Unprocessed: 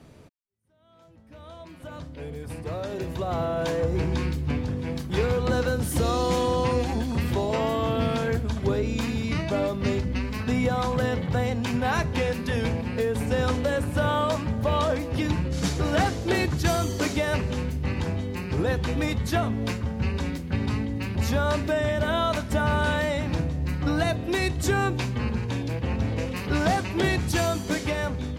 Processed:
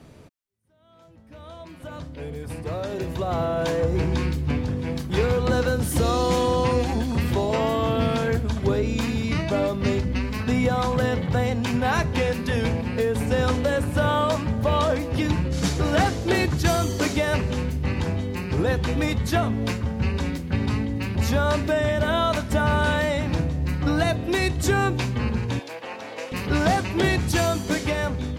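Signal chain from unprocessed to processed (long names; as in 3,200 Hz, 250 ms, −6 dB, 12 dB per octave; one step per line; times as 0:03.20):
0:25.59–0:26.32: Chebyshev high-pass filter 650 Hz, order 2
level +2.5 dB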